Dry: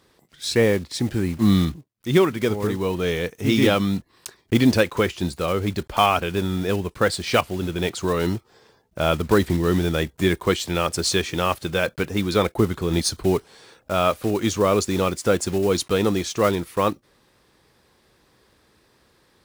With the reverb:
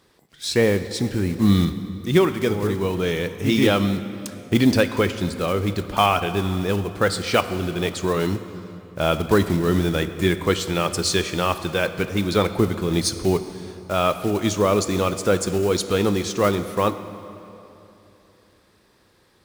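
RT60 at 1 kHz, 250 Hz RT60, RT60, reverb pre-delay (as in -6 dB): 2.9 s, 3.3 s, 3.0 s, 4 ms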